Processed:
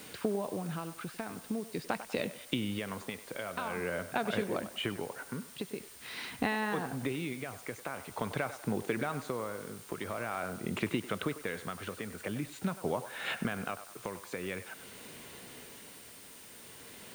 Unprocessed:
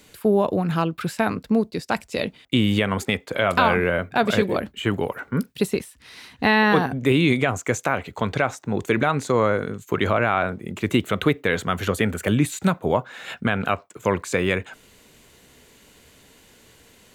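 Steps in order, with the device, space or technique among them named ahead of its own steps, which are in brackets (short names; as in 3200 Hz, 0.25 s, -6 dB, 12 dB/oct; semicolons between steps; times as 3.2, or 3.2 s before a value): medium wave at night (BPF 110–4200 Hz; compressor 6:1, threshold -34 dBFS, peak gain reduction 19.5 dB; tremolo 0.46 Hz, depth 59%; whine 9000 Hz -60 dBFS; white noise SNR 16 dB); narrowing echo 97 ms, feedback 48%, band-pass 1000 Hz, level -11 dB; gain +3.5 dB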